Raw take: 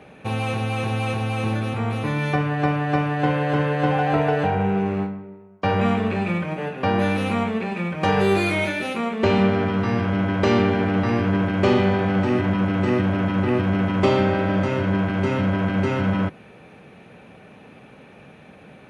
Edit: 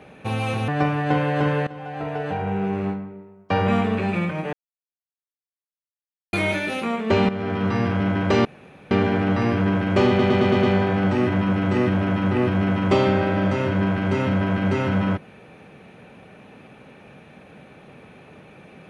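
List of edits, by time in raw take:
0.68–2.81 s: delete
3.80–5.16 s: fade in, from -20.5 dB
6.66–8.46 s: mute
9.42–9.79 s: fade in, from -13.5 dB
10.58 s: insert room tone 0.46 s
11.75 s: stutter 0.11 s, 6 plays

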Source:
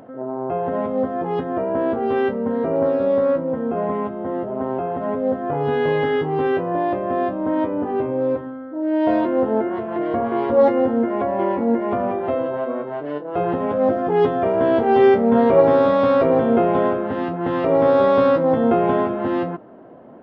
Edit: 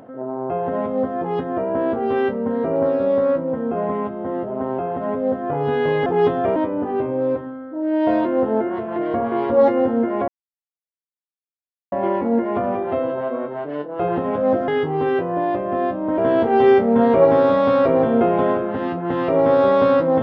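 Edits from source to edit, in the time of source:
6.06–7.56 s: swap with 14.04–14.54 s
11.28 s: insert silence 1.64 s

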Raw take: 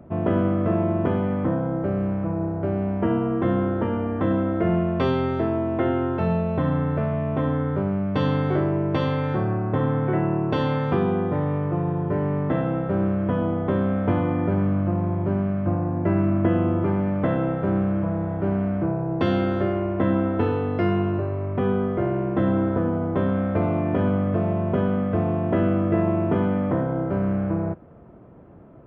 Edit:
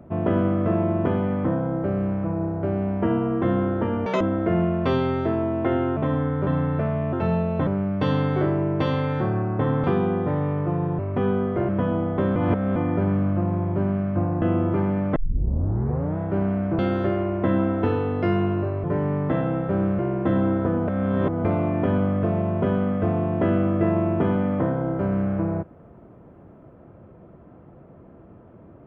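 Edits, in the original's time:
4.06–4.35 s: speed 196%
6.11–6.65 s: swap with 7.31–7.81 s
9.98–10.89 s: delete
12.04–13.19 s: swap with 21.40–22.10 s
13.86–14.26 s: reverse
15.92–16.52 s: delete
17.26 s: tape start 1.02 s
18.89–19.35 s: delete
22.99–23.56 s: reverse

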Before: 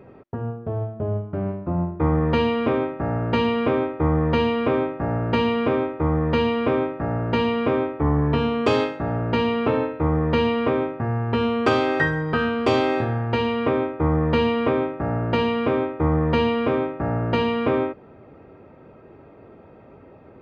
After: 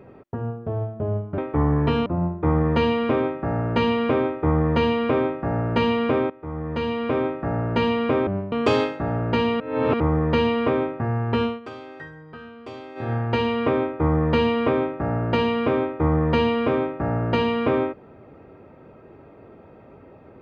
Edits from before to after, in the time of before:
1.38–1.63 s: swap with 7.84–8.52 s
5.87–6.97 s: fade in, from -17.5 dB
9.60–10.00 s: reverse
11.42–13.13 s: dip -18.5 dB, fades 0.18 s

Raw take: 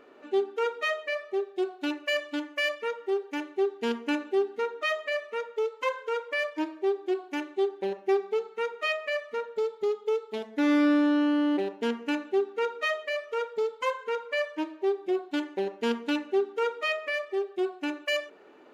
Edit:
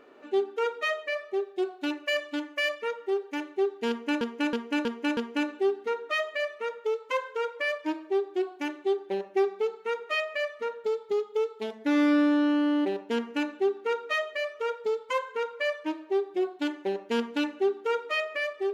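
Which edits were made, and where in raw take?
3.89–4.21 s: loop, 5 plays

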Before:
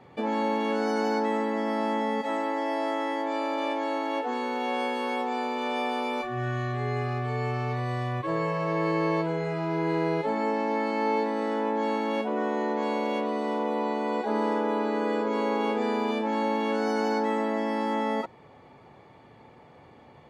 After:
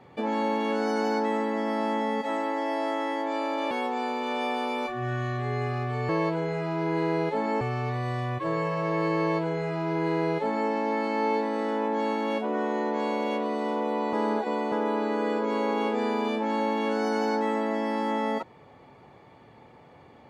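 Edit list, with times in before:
3.71–5.06 s: delete
9.01–10.53 s: copy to 7.44 s
13.96–14.55 s: reverse

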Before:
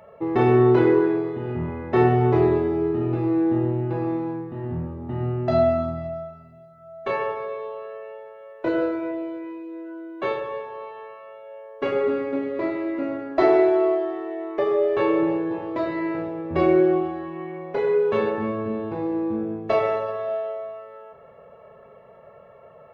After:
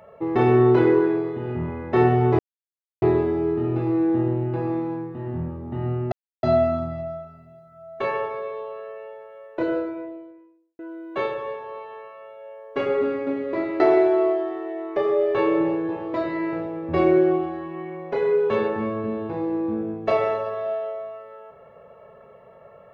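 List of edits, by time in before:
2.39 s: insert silence 0.63 s
5.49 s: insert silence 0.31 s
8.41–9.85 s: studio fade out
12.86–13.42 s: delete

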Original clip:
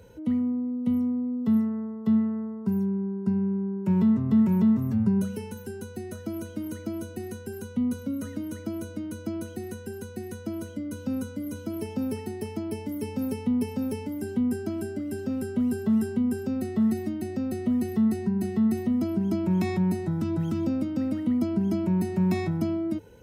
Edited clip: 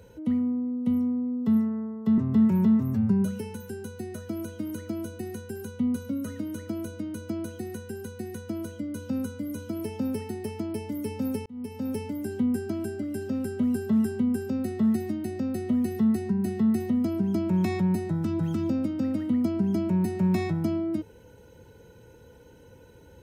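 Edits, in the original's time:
2.18–4.15 s: delete
13.43–13.93 s: fade in

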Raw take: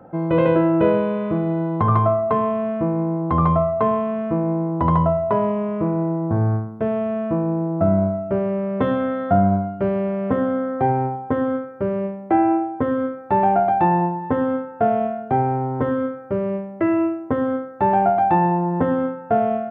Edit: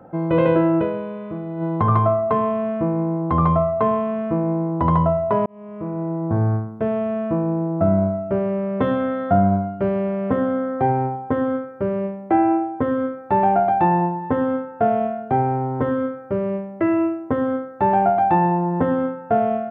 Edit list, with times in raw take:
0.79–1.63 s: dip -8 dB, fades 0.37 s exponential
5.46–6.34 s: fade in

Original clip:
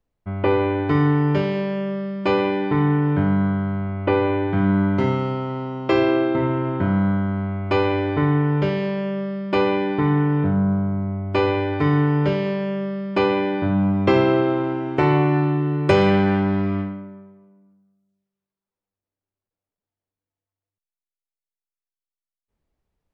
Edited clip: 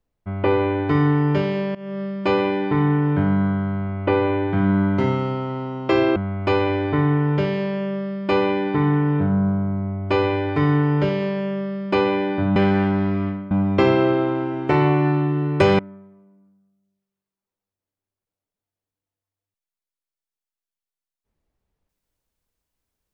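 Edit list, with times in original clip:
1.75–2.02 s: fade in, from -19.5 dB
6.16–7.40 s: delete
16.08–17.03 s: move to 13.80 s

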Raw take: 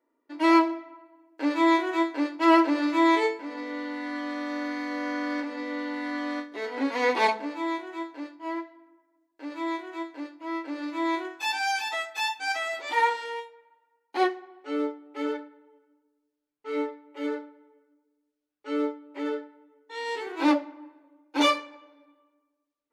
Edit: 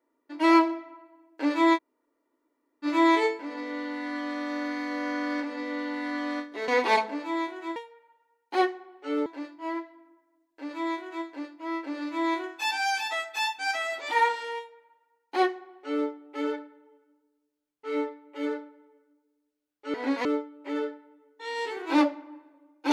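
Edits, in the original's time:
1.76–2.85 s: room tone, crossfade 0.06 s
6.68–6.99 s: move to 18.75 s
13.38–14.88 s: copy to 8.07 s

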